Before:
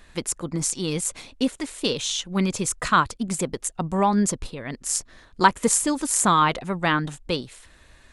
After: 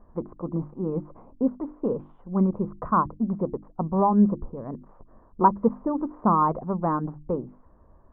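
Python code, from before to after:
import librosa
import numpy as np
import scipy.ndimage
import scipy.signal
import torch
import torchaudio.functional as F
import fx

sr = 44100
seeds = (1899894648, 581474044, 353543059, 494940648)

y = scipy.signal.sosfilt(scipy.signal.ellip(4, 1.0, 80, 1100.0, 'lowpass', fs=sr, output='sos'), x)
y = fx.peak_eq(y, sr, hz=210.0, db=6.0, octaves=0.22)
y = fx.hum_notches(y, sr, base_hz=50, count=7)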